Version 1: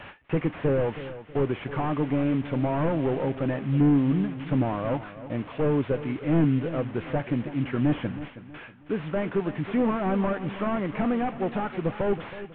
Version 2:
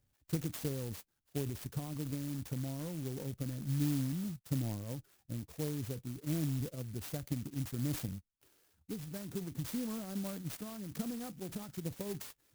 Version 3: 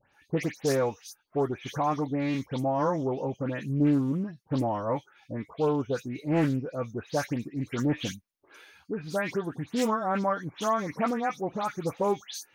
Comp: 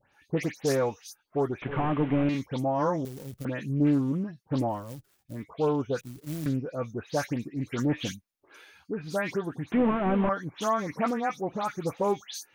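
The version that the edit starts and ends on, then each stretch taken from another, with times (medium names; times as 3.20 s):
3
1.62–2.29 s: from 1
3.05–3.45 s: from 2
4.79–5.37 s: from 2, crossfade 0.24 s
6.01–6.46 s: from 2
9.72–10.29 s: from 1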